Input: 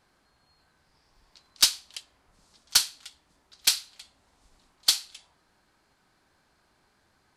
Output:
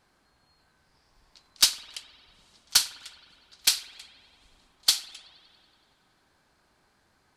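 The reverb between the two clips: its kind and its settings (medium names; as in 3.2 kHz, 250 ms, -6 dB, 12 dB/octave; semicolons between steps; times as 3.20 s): spring tank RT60 2.2 s, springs 50 ms, chirp 45 ms, DRR 14 dB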